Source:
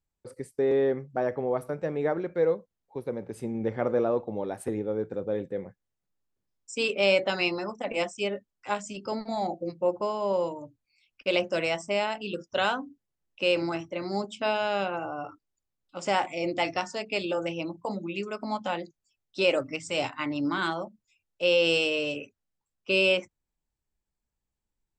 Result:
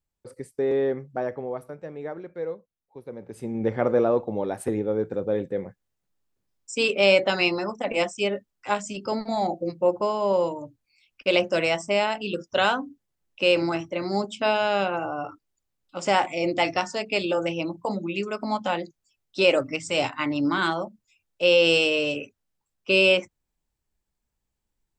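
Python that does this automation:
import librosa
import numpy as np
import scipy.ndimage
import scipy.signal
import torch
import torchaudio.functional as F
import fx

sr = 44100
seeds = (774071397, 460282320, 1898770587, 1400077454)

y = fx.gain(x, sr, db=fx.line((1.13, 0.5), (1.8, -7.0), (3.02, -7.0), (3.66, 4.5)))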